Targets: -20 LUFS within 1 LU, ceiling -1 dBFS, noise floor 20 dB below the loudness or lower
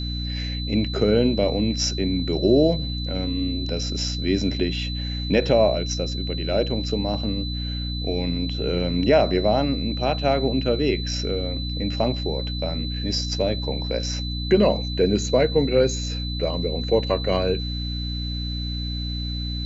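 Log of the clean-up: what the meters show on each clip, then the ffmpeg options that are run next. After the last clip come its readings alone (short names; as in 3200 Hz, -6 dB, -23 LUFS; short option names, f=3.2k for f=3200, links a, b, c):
hum 60 Hz; harmonics up to 300 Hz; hum level -26 dBFS; steady tone 4000 Hz; tone level -32 dBFS; loudness -23.5 LUFS; peak -6.0 dBFS; loudness target -20.0 LUFS
-> -af "bandreject=f=60:t=h:w=6,bandreject=f=120:t=h:w=6,bandreject=f=180:t=h:w=6,bandreject=f=240:t=h:w=6,bandreject=f=300:t=h:w=6"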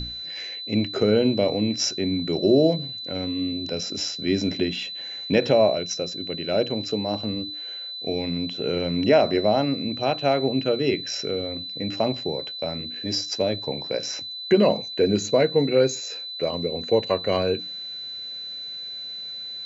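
hum none; steady tone 4000 Hz; tone level -32 dBFS
-> -af "bandreject=f=4k:w=30"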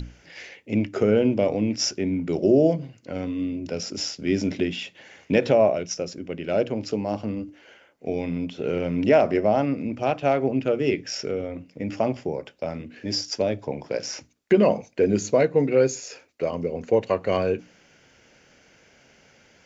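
steady tone none; loudness -24.5 LUFS; peak -7.0 dBFS; loudness target -20.0 LUFS
-> -af "volume=4.5dB"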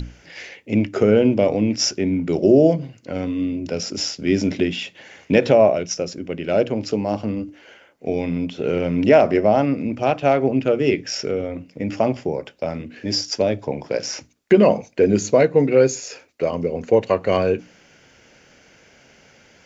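loudness -20.0 LUFS; peak -2.5 dBFS; noise floor -53 dBFS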